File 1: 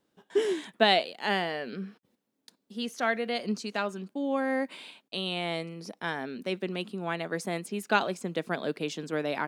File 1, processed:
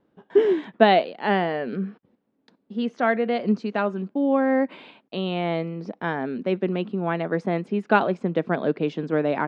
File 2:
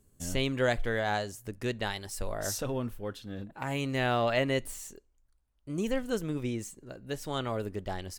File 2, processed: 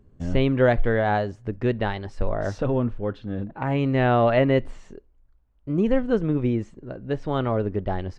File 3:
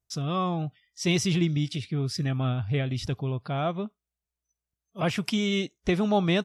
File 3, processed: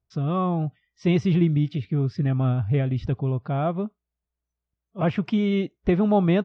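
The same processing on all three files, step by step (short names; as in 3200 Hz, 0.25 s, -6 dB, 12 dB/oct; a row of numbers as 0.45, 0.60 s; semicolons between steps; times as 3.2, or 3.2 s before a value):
tape spacing loss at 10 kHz 41 dB; match loudness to -24 LUFS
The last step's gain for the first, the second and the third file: +10.5, +11.5, +5.5 dB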